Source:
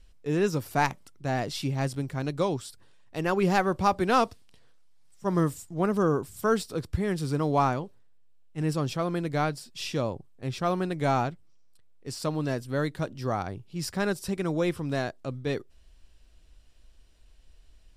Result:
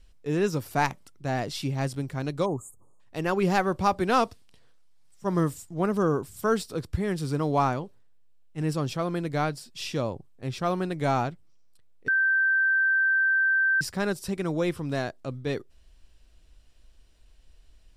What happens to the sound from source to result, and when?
2.45–3.00 s: spectral selection erased 1.3–6.3 kHz
12.08–13.81 s: bleep 1.56 kHz -19.5 dBFS

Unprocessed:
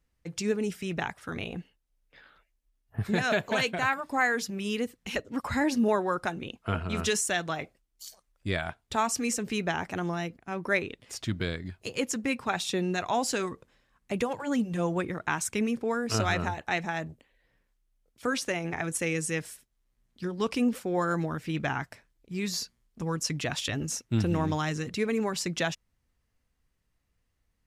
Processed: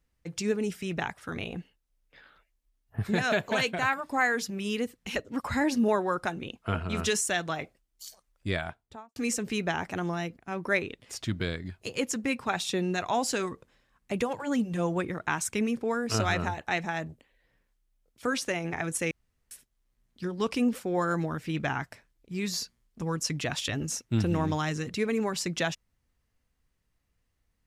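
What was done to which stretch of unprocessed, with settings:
8.51–9.16 s: studio fade out
19.11–19.51 s: room tone

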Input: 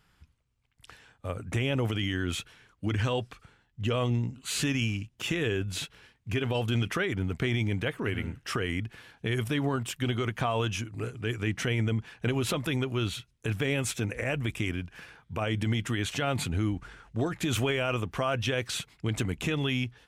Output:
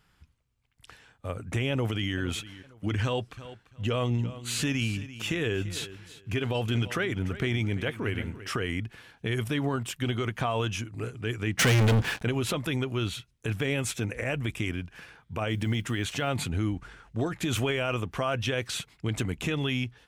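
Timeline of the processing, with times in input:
1.71–2.16 s: echo throw 460 ms, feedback 30%, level -16 dB
3.03–8.48 s: feedback delay 341 ms, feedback 20%, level -15 dB
11.59–12.23 s: waveshaping leveller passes 5
15.49–16.29 s: block-companded coder 7-bit

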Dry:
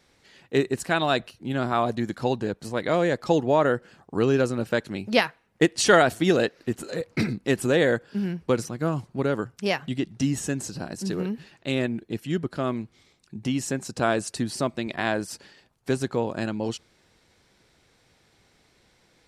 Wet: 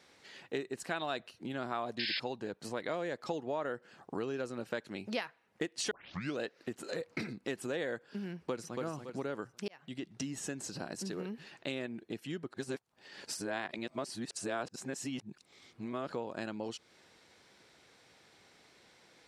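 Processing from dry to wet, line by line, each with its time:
1.99–2.20 s: painted sound noise 1.5–5.3 kHz -22 dBFS
5.91 s: tape start 0.47 s
8.35–8.81 s: echo throw 280 ms, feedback 25%, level -6 dB
9.68–10.36 s: fade in
12.53–16.12 s: reverse
whole clip: compression 4:1, threshold -36 dBFS; high-pass 310 Hz 6 dB/octave; treble shelf 11 kHz -8.5 dB; trim +1.5 dB

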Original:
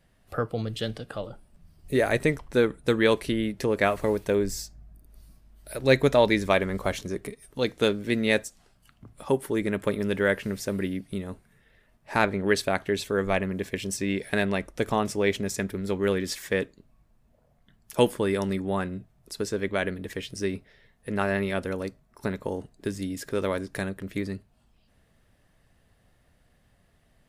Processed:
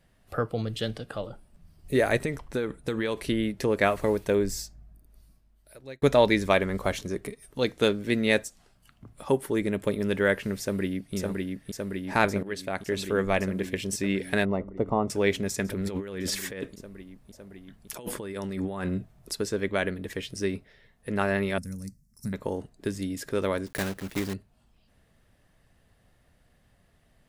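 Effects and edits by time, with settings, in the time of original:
2.17–3.28 s: compression, threshold -24 dBFS
4.59–6.02 s: fade out
9.61–10.02 s: dynamic bell 1.4 kHz, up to -6 dB, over -45 dBFS, Q 1.1
10.60–11.15 s: echo throw 560 ms, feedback 80%, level -2.5 dB
12.43–13.12 s: fade in, from -16.5 dB
14.45–15.10 s: Savitzky-Golay filter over 65 samples
15.68–19.35 s: compressor with a negative ratio -33 dBFS
21.58–22.33 s: FFT filter 220 Hz 0 dB, 350 Hz -21 dB, 900 Hz -26 dB, 2.1 kHz -16 dB, 3.3 kHz -26 dB, 5.3 kHz +5 dB
23.66–24.34 s: block-companded coder 3-bit

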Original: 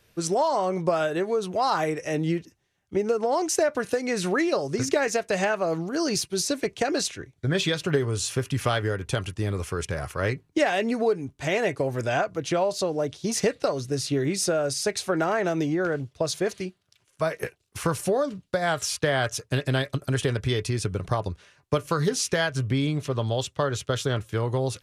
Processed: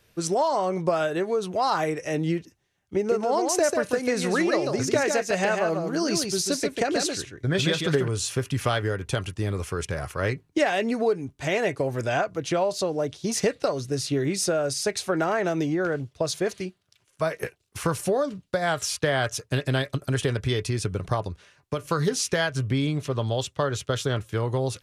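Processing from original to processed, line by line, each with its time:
2.97–8.08 s: delay 143 ms -5 dB
21.22–21.87 s: compression 1.5:1, threshold -30 dBFS

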